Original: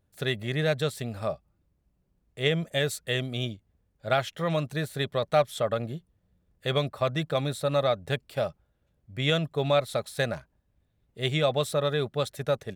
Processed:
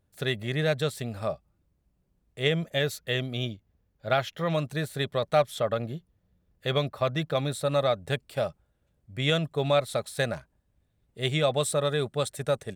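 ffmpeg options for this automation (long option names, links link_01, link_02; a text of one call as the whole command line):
ffmpeg -i in.wav -af "asetnsamples=nb_out_samples=441:pad=0,asendcmd='2.65 equalizer g -10;4.54 equalizer g 1.5;5.55 equalizer g -5.5;7.52 equalizer g 4.5;11.54 equalizer g 12',equalizer=frequency=8500:width_type=o:width=0.33:gain=0.5" out.wav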